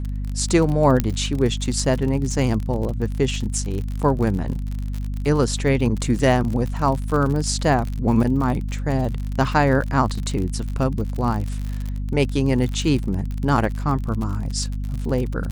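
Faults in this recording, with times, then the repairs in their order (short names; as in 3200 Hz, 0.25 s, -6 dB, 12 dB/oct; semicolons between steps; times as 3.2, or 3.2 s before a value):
crackle 51/s -26 dBFS
hum 50 Hz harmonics 5 -26 dBFS
1 pop -6 dBFS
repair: de-click; de-hum 50 Hz, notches 5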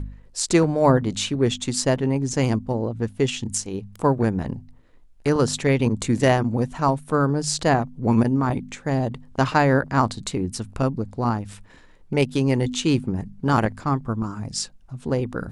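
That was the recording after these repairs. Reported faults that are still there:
none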